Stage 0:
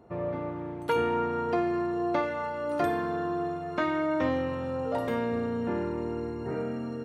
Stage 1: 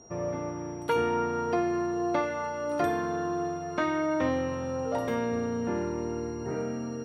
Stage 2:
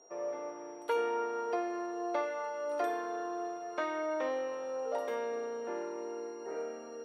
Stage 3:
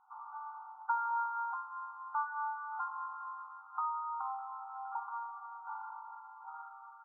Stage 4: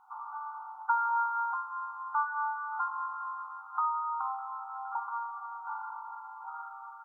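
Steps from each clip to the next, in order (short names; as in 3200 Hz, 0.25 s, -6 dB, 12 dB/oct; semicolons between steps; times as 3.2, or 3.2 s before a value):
whine 5700 Hz -53 dBFS
ladder high-pass 360 Hz, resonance 30%
FFT band-pass 750–1500 Hz; gain +4 dB
dynamic EQ 680 Hz, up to -6 dB, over -53 dBFS, Q 1.9; gain +7 dB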